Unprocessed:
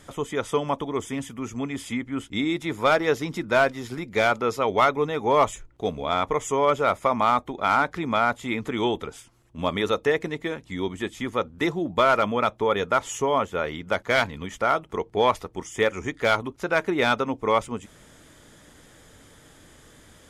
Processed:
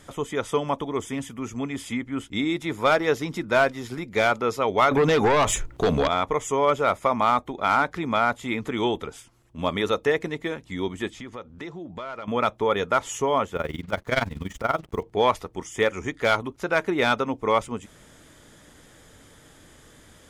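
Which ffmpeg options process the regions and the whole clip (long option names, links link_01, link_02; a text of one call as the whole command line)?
ffmpeg -i in.wav -filter_complex "[0:a]asettb=1/sr,asplit=3[link_01][link_02][link_03];[link_01]atrim=end=4.914[link_04];[link_02]atrim=start=4.91:end=6.08,asetpts=PTS-STARTPTS,afade=type=in:duration=0.004:curve=qsin,afade=type=out:start_time=1.166:duration=0.004:curve=qsin,acompressor=threshold=-25dB:ratio=6:attack=3.2:release=140:knee=1:detection=peak,aeval=exprs='0.178*sin(PI/2*3.16*val(0)/0.178)':channel_layout=same[link_05];[link_03]atrim=start=6.076[link_06];[link_04][link_05]acrossfade=duration=0.004:curve1=hsin:curve2=qsin[link_07];[link_07][link_06]acrossfade=duration=0.004:curve1=qsin:curve2=hsin,asettb=1/sr,asplit=3[link_08][link_09][link_10];[link_08]atrim=end=11.104[link_11];[link_09]atrim=start=11.1:end=12.28,asetpts=PTS-STARTPTS,afade=type=in:duration=0.004:curve=qsin,afade=type=out:start_time=1.176:duration=0.004:curve=qsin,lowpass=7000,acompressor=threshold=-37dB:ratio=3:attack=3.2:release=140:knee=1:detection=peak[link_12];[link_10]atrim=start=12.276[link_13];[link_11][link_12]acrossfade=duration=0.004:curve1=hsin:curve2=qsin[link_14];[link_14][link_13]acrossfade=duration=0.004:curve1=qsin:curve2=hsin,asettb=1/sr,asplit=3[link_15][link_16][link_17];[link_15]atrim=end=13.564[link_18];[link_16]atrim=start=13.56:end=15.03,asetpts=PTS-STARTPTS,afade=type=in:duration=0.004:curve=qsin,afade=type=out:start_time=1.466:duration=0.004:curve=qsin,lowshelf=frequency=200:gain=10.5,acrusher=bits=7:mix=0:aa=0.5,tremolo=f=21:d=0.857[link_19];[link_17]atrim=start=15.026[link_20];[link_18][link_19]acrossfade=duration=0.004:curve1=hsin:curve2=qsin[link_21];[link_21][link_20]acrossfade=duration=0.004:curve1=qsin:curve2=hsin" out.wav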